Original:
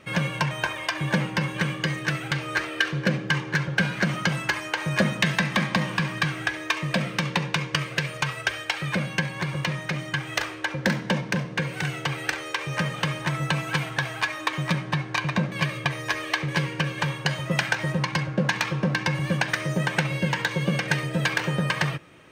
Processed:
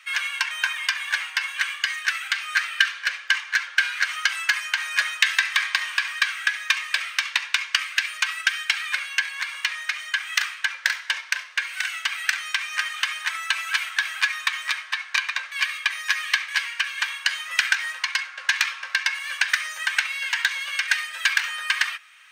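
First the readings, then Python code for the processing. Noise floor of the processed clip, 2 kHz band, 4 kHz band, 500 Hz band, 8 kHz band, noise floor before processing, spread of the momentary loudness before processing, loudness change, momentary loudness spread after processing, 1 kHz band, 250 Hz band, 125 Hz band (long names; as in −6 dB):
−41 dBFS, +4.5 dB, +5.5 dB, below −25 dB, +5.5 dB, −37 dBFS, 4 LU, +2.5 dB, 4 LU, −3.5 dB, below −40 dB, below −40 dB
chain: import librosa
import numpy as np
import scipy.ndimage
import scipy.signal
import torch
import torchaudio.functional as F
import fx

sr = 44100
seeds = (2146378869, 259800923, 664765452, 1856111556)

y = scipy.signal.sosfilt(scipy.signal.butter(4, 1400.0, 'highpass', fs=sr, output='sos'), x)
y = y * 10.0 ** (5.5 / 20.0)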